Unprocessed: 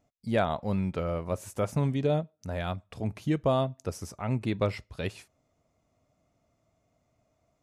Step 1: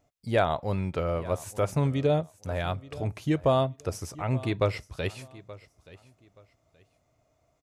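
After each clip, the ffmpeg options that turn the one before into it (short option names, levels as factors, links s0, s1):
-af "equalizer=f=210:w=3.4:g=-9.5,aecho=1:1:876|1752:0.112|0.0281,volume=1.41"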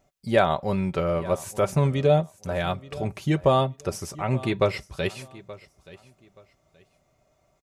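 -af "aecho=1:1:5.2:0.47,volume=1.5"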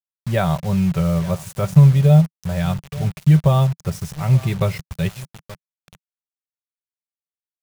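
-af "acrusher=bits=5:mix=0:aa=0.000001,lowshelf=f=210:t=q:w=3:g=8.5,volume=0.891"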